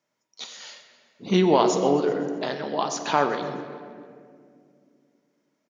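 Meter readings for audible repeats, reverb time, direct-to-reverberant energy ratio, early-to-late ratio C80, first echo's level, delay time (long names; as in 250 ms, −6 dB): 3, 2.2 s, 5.5 dB, 8.0 dB, −16.5 dB, 128 ms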